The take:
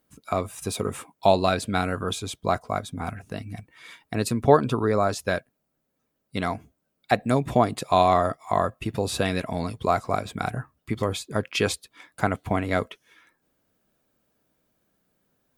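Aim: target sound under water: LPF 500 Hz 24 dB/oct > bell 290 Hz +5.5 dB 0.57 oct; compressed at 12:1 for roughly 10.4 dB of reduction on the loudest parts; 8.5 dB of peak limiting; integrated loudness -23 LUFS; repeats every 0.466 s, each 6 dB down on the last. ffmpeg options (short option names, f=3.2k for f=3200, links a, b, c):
-af "acompressor=threshold=-22dB:ratio=12,alimiter=limit=-16.5dB:level=0:latency=1,lowpass=f=500:w=0.5412,lowpass=f=500:w=1.3066,equalizer=f=290:t=o:w=0.57:g=5.5,aecho=1:1:466|932|1398|1864|2330|2796:0.501|0.251|0.125|0.0626|0.0313|0.0157,volume=10dB"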